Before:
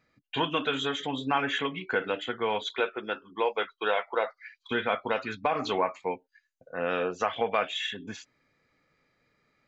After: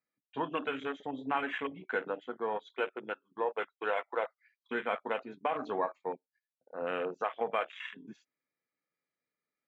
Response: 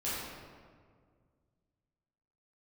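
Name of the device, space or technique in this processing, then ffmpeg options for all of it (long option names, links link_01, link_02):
over-cleaned archive recording: -af "highpass=190,lowpass=6800,afwtdn=0.0224,volume=-5dB"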